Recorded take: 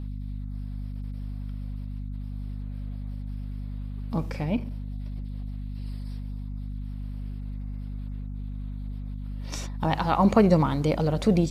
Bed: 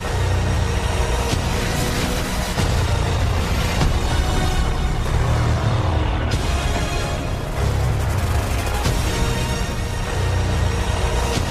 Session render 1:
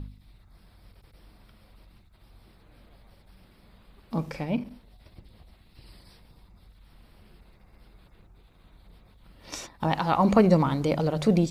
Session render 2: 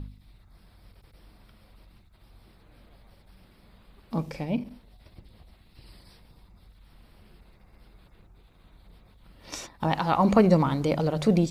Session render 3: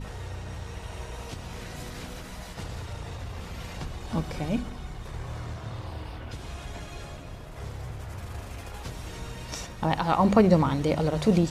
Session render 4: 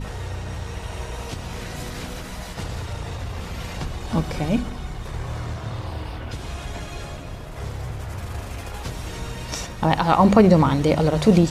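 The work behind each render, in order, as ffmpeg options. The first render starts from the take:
-af "bandreject=f=50:t=h:w=4,bandreject=f=100:t=h:w=4,bandreject=f=150:t=h:w=4,bandreject=f=200:t=h:w=4,bandreject=f=250:t=h:w=4"
-filter_complex "[0:a]asettb=1/sr,asplit=3[a][b][c];[a]atrim=end=4.224[d];[b]atrim=start=4.22:end=4.67,asetpts=PTS-STARTPTS,afade=t=in:d=0.004:c=qsin,afade=t=out:st=0.446:d=0.004:c=qsin,equalizer=f=1.4k:t=o:w=1.1:g=-6[e];[c]atrim=start=4.666[f];[d][e]acrossfade=d=0.004:c1=hsin:c2=qsin[g];[g][f]acrossfade=d=0.004:c1=qsin:c2=hsin"
-filter_complex "[1:a]volume=-18dB[a];[0:a][a]amix=inputs=2:normalize=0"
-af "volume=6.5dB,alimiter=limit=-3dB:level=0:latency=1"

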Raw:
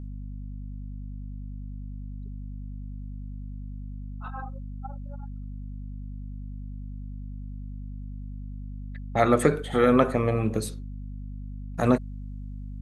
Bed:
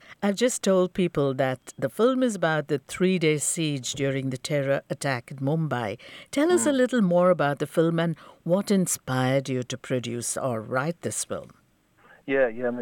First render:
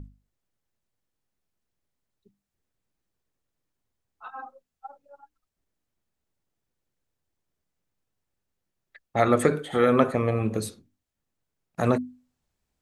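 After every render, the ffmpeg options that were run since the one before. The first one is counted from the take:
-af "bandreject=f=50:t=h:w=6,bandreject=f=100:t=h:w=6,bandreject=f=150:t=h:w=6,bandreject=f=200:t=h:w=6,bandreject=f=250:t=h:w=6,bandreject=f=300:t=h:w=6"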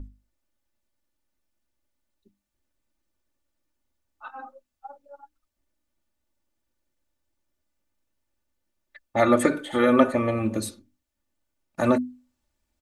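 -af "aecho=1:1:3.4:0.75"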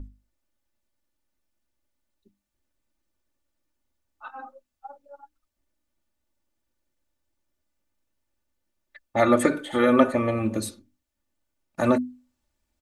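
-af anull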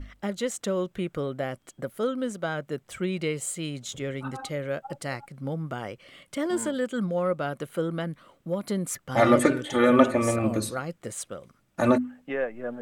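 -filter_complex "[1:a]volume=-6.5dB[a];[0:a][a]amix=inputs=2:normalize=0"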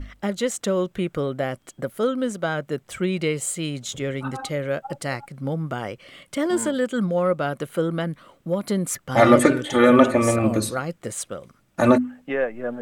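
-af "volume=5dB,alimiter=limit=-2dB:level=0:latency=1"

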